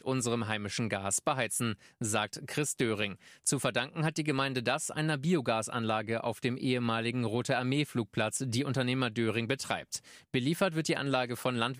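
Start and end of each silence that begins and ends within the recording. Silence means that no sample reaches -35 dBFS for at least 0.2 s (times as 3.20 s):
1.73–2.01 s
3.13–3.47 s
9.97–10.34 s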